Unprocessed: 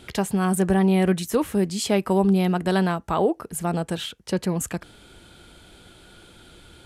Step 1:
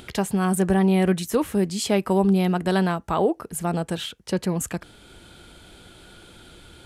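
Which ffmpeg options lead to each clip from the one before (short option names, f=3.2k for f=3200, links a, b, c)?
-af "acompressor=mode=upward:threshold=-42dB:ratio=2.5"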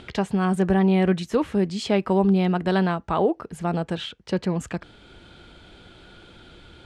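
-af "lowpass=4.4k"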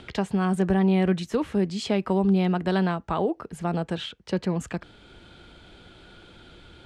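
-filter_complex "[0:a]acrossover=split=280|3000[a][b][c];[b]acompressor=threshold=-21dB:ratio=6[d];[a][d][c]amix=inputs=3:normalize=0,volume=-1.5dB"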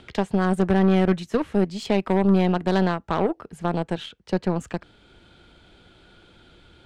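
-af "aeval=exprs='0.282*(cos(1*acos(clip(val(0)/0.282,-1,1)))-cos(1*PI/2))+0.0178*(cos(4*acos(clip(val(0)/0.282,-1,1)))-cos(4*PI/2))+0.00891*(cos(5*acos(clip(val(0)/0.282,-1,1)))-cos(5*PI/2))+0.0251*(cos(7*acos(clip(val(0)/0.282,-1,1)))-cos(7*PI/2))':c=same,volume=2dB"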